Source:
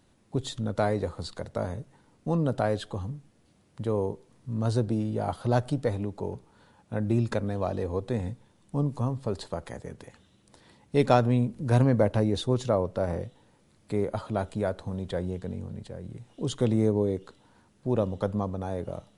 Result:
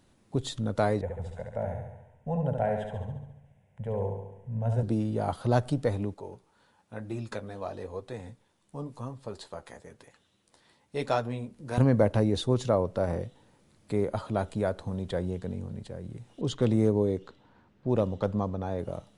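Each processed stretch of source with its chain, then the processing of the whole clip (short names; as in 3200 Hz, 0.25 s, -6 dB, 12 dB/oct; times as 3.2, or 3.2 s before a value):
1.01–4.83 LPF 1800 Hz 6 dB/oct + fixed phaser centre 1200 Hz, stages 6 + flutter echo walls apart 12 m, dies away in 0.9 s
6.14–11.78 low shelf 350 Hz -9.5 dB + flange 1 Hz, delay 5.9 ms, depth 8.8 ms, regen -41%
16.41–18.79 low-pass opened by the level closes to 2900 Hz, open at -19 dBFS + hard clip -14 dBFS
whole clip: dry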